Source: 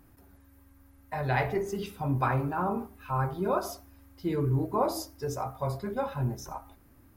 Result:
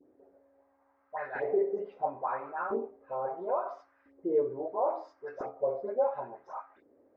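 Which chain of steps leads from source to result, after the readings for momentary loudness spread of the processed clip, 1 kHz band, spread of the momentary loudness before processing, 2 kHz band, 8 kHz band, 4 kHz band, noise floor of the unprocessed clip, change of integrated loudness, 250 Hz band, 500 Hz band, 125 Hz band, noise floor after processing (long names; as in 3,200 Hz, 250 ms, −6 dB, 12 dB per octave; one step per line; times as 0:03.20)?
13 LU, −3.0 dB, 10 LU, −6.5 dB, below −30 dB, below −25 dB, −59 dBFS, −2.5 dB, −8.5 dB, +2.0 dB, −27.0 dB, −70 dBFS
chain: low-pass filter 6,000 Hz 24 dB per octave
brickwall limiter −23 dBFS, peak gain reduction 9.5 dB
octave-band graphic EQ 250/500/2,000 Hz +4/+10/+10 dB
auto-filter band-pass saw up 0.74 Hz 340–1,600 Hz
parametric band 670 Hz +8.5 dB 1.7 octaves
all-pass dispersion highs, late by 85 ms, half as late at 1,600 Hz
level −6.5 dB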